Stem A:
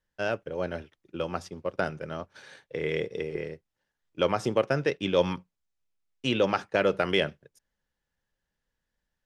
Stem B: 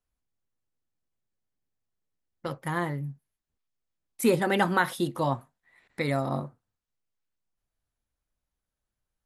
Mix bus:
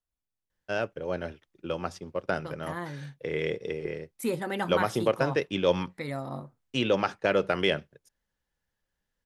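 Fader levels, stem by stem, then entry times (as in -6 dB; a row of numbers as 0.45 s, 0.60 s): -0.5 dB, -7.0 dB; 0.50 s, 0.00 s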